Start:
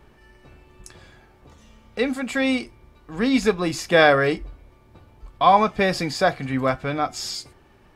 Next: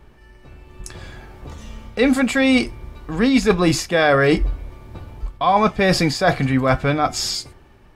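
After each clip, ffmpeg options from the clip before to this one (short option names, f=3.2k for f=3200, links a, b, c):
-af "areverse,acompressor=threshold=-24dB:ratio=6,areverse,lowshelf=f=100:g=7,dynaudnorm=f=200:g=9:m=10.5dB,volume=1dB"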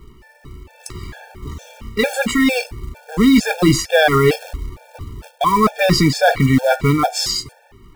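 -af "apsyclip=10.5dB,acrusher=bits=5:mode=log:mix=0:aa=0.000001,afftfilt=real='re*gt(sin(2*PI*2.2*pts/sr)*(1-2*mod(floor(b*sr/1024/460),2)),0)':imag='im*gt(sin(2*PI*2.2*pts/sr)*(1-2*mod(floor(b*sr/1024/460),2)),0)':win_size=1024:overlap=0.75,volume=-4.5dB"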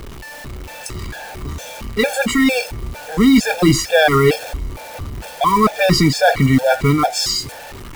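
-af "aeval=exprs='val(0)+0.5*0.0335*sgn(val(0))':c=same"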